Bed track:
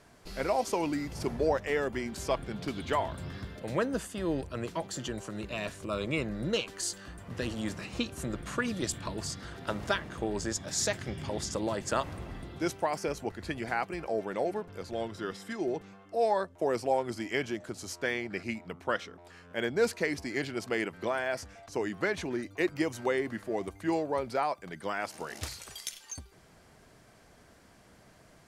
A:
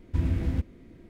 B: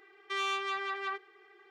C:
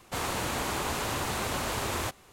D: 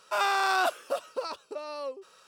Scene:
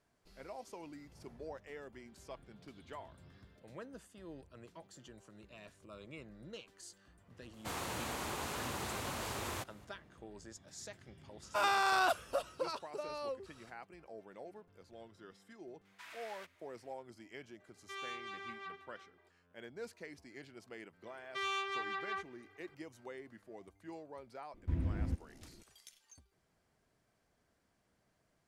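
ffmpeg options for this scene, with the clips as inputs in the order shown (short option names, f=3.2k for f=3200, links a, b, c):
-filter_complex "[1:a]asplit=2[a][b];[2:a]asplit=2[c][d];[0:a]volume=-19dB[e];[3:a]highpass=55[f];[4:a]aresample=32000,aresample=44100[g];[a]highpass=f=1.1k:w=0.5412,highpass=f=1.1k:w=1.3066[h];[c]aecho=1:1:330:0.237[i];[b]highshelf=f=2.4k:g=-10.5[j];[f]atrim=end=2.32,asetpts=PTS-STARTPTS,volume=-9dB,afade=t=in:d=0.004:c=hsin,afade=t=out:st=2.316:d=0.004:c=hsin,adelay=7530[k];[g]atrim=end=2.27,asetpts=PTS-STARTPTS,volume=-5dB,afade=t=in:d=0.004:c=hsin,afade=t=out:st=2.266:d=0.004:c=hsin,adelay=11430[l];[h]atrim=end=1.09,asetpts=PTS-STARTPTS,volume=-2dB,afade=t=in:d=0.004:c=hsin,afade=t=out:st=1.086:d=0.004:c=hsin,adelay=15850[m];[i]atrim=end=1.7,asetpts=PTS-STARTPTS,volume=-12dB,afade=t=in:d=0.004:c=hsin,afade=t=out:st=1.696:d=0.004:c=hsin,adelay=17590[n];[d]atrim=end=1.7,asetpts=PTS-STARTPTS,volume=-4.5dB,afade=t=in:d=0.004:c=hsin,afade=t=out:st=1.696:d=0.004:c=hsin,adelay=21050[o];[j]atrim=end=1.09,asetpts=PTS-STARTPTS,volume=-9dB,afade=t=in:d=0.004:c=hsin,afade=t=out:st=1.086:d=0.004:c=hsin,adelay=24540[p];[e][k][l][m][n][o][p]amix=inputs=7:normalize=0"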